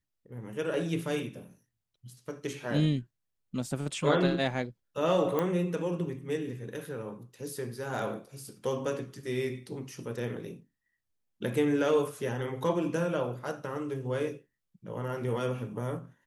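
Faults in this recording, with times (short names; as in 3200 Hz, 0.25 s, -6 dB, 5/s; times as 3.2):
5.39 pop -17 dBFS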